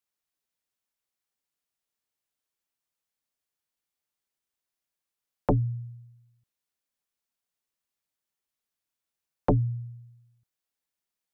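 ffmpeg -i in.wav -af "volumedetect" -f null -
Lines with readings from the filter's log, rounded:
mean_volume: -36.7 dB
max_volume: -14.9 dB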